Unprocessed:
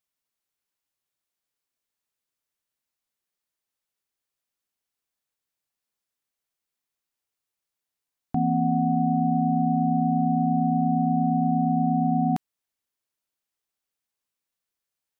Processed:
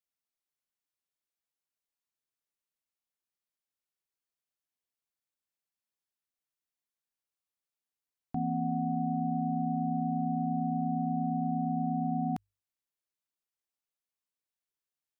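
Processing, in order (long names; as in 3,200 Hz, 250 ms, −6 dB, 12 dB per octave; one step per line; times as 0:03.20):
mains-hum notches 50/100 Hz
level −8.5 dB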